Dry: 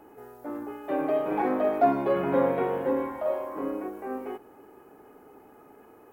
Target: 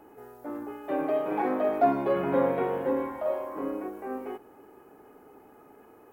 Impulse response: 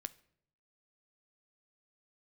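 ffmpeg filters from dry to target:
-filter_complex "[0:a]asettb=1/sr,asplit=3[a][b][c];[a]atrim=end=1.034[d];[b]atrim=start=1.03:end=1.69,asetpts=PTS-STARTPTS,afade=t=in:d=0.004:c=qsin,afade=t=out:st=0.656:d=0.004:c=qsin,highpass=f=130:p=1[e];[c]atrim=start=1.686[f];[d][e]acrossfade=d=0.004:c1=hsin:c2=qsin[g];[g][f]acrossfade=d=0.004:c1=qsin:c2=hsin,volume=-1dB"

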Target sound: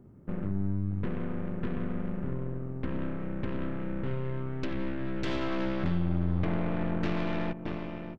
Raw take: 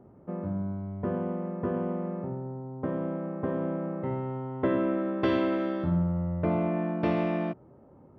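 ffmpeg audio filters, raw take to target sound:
-af "aecho=1:1:621:0.237,acompressor=threshold=-29dB:ratio=8,aeval=exprs='0.112*(cos(1*acos(clip(val(0)/0.112,-1,1)))-cos(1*PI/2))+0.0251*(cos(5*acos(clip(val(0)/0.112,-1,1)))-cos(5*PI/2))+0.00794*(cos(7*acos(clip(val(0)/0.112,-1,1)))-cos(7*PI/2))+0.0282*(cos(8*acos(clip(val(0)/0.112,-1,1)))-cos(8*PI/2))':c=same,asetnsamples=n=441:p=0,asendcmd='5.26 equalizer g -7',equalizer=f=750:w=0.68:g=-15"

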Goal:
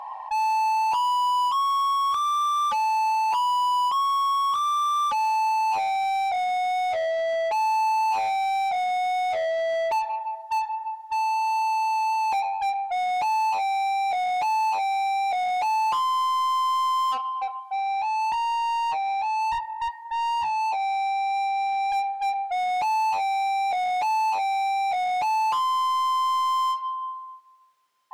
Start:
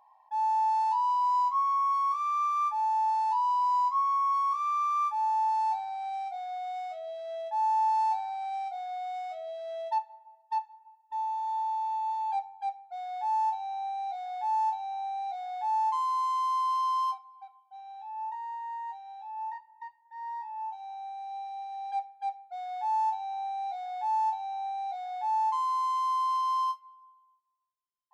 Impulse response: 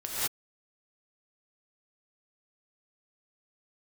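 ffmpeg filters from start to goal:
-filter_complex "[0:a]asplit=2[a][b];[b]highpass=f=720:p=1,volume=32dB,asoftclip=type=tanh:threshold=-20.5dB[c];[a][c]amix=inputs=2:normalize=0,lowpass=f=2.3k:p=1,volume=-6dB,volume=2dB"

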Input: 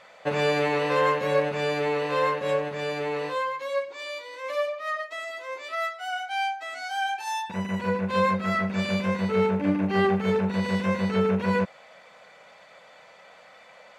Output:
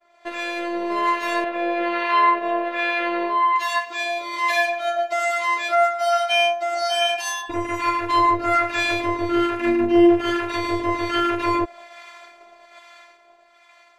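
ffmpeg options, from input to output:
-filter_complex "[0:a]acrossover=split=850[a][b];[a]aeval=exprs='val(0)*(1-0.7/2+0.7/2*cos(2*PI*1.2*n/s))':c=same[c];[b]aeval=exprs='val(0)*(1-0.7/2-0.7/2*cos(2*PI*1.2*n/s))':c=same[d];[c][d]amix=inputs=2:normalize=0,asplit=2[e][f];[f]acompressor=threshold=-36dB:ratio=6,volume=0dB[g];[e][g]amix=inputs=2:normalize=0,asettb=1/sr,asplit=3[h][i][j];[h]atrim=end=1.444[k];[i]atrim=start=1.44:end=3.56,asetpts=PTS-STARTPTS,afade=t=in:d=0.004:c=qsin,afade=t=out:st=2.116:d=0.004:c=qsin,acrossover=split=440 3600:gain=0.2 1 0.0794[l][m][n];[l][m][n]amix=inputs=3:normalize=0[o];[j]atrim=start=3.556[p];[k][o]acrossfade=d=0.004:c1=hsin:c2=qsin[q];[q][p]acrossfade=d=0.004:c1=qsin:c2=hsin,agate=range=-33dB:threshold=-43dB:ratio=3:detection=peak,dynaudnorm=f=120:g=21:m=14dB,afftfilt=real='hypot(re,im)*cos(PI*b)':imag='0':win_size=512:overlap=0.75,volume=1.5dB"

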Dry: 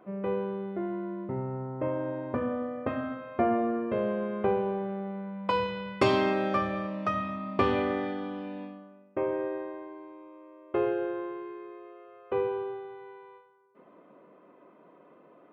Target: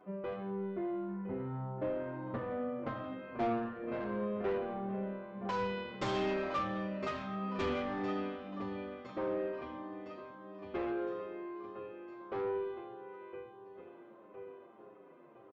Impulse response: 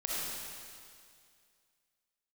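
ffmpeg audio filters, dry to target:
-filter_complex "[0:a]aecho=1:1:1011|2022|3033|4044|5055|6066:0.224|0.125|0.0702|0.0393|0.022|0.0123,aresample=16000,asoftclip=type=tanh:threshold=-26.5dB,aresample=44100,asplit=2[a][b];[b]adelay=7.5,afreqshift=-1.6[c];[a][c]amix=inputs=2:normalize=1,volume=-1dB"

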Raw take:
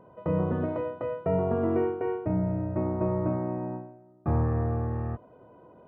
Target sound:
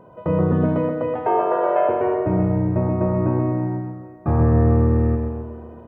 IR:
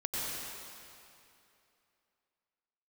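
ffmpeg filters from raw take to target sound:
-filter_complex "[0:a]asettb=1/sr,asplit=3[a][b][c];[a]atrim=end=1.154[d];[b]atrim=start=1.15:end=1.89,asetpts=PTS-STARTPTS,afade=t=in:d=0.004:c=qsin,afade=t=out:st=0.736:d=0.004:c=qsin,afreqshift=260[e];[c]atrim=start=1.886[f];[d][e]acrossfade=d=0.004:c1=hsin:c2=qsin[g];[g][f]acrossfade=d=0.004:c1=qsin:c2=hsin,aecho=1:1:129|258|387|516|645:0.562|0.247|0.109|0.0479|0.0211,asplit=2[h][i];[1:a]atrim=start_sample=2205,adelay=73[j];[i][j]afir=irnorm=-1:irlink=0,volume=-16.5dB[k];[h][k]amix=inputs=2:normalize=0,volume=6.5dB"

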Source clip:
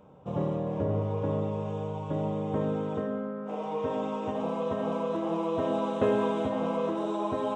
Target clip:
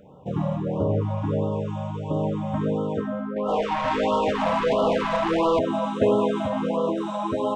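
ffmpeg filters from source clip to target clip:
-filter_complex "[0:a]asettb=1/sr,asplit=3[a][b][c];[a]atrim=end=3.364[d];[b]atrim=start=3.36:end=5.59,asetpts=PTS-STARTPTS,afade=t=in:d=0.004:c=qsin,afade=t=out:st=2.226:d=0.004:c=qsin,asplit=2[e][f];[f]highpass=f=720:p=1,volume=19dB,asoftclip=type=tanh:threshold=-18.5dB[g];[e][g]amix=inputs=2:normalize=0,lowpass=f=6.5k:p=1,volume=-6dB[h];[c]atrim=start=5.586[i];[d][h]acrossfade=d=0.004:c1=hsin:c2=qsin[j];[j][i]acrossfade=d=0.004:c1=qsin:c2=hsin,afftfilt=real='re*(1-between(b*sr/1024,350*pow(2000/350,0.5+0.5*sin(2*PI*1.5*pts/sr))/1.41,350*pow(2000/350,0.5+0.5*sin(2*PI*1.5*pts/sr))*1.41))':imag='im*(1-between(b*sr/1024,350*pow(2000/350,0.5+0.5*sin(2*PI*1.5*pts/sr))/1.41,350*pow(2000/350,0.5+0.5*sin(2*PI*1.5*pts/sr))*1.41))':win_size=1024:overlap=0.75,volume=5.5dB"

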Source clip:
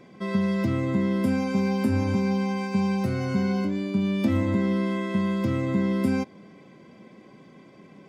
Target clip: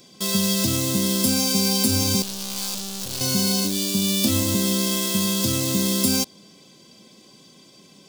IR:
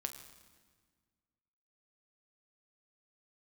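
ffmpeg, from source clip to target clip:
-filter_complex "[0:a]asettb=1/sr,asplit=3[a][b][c];[a]atrim=end=2.224[d];[b]atrim=start=2.22:end=3.21,asetpts=PTS-STARTPTS,afade=t=in:d=0.004:c=qsin,afade=t=out:st=0.986:d=0.004:c=qsin,aeval=exprs='(tanh(63.1*val(0)+0.7)-tanh(0.7))/63.1':c=same[e];[c]atrim=start=3.206[f];[d][e]acrossfade=d=0.004:c1=hsin:c2=qsin[g];[g][f]acrossfade=d=0.004:c1=qsin:c2=hsin,asplit=2[h][i];[i]acrusher=bits=5:mix=0:aa=0.000001,volume=-5dB[j];[h][j]amix=inputs=2:normalize=0,aexciter=amount=13.5:drive=3:freq=3.1k,volume=-3.5dB"

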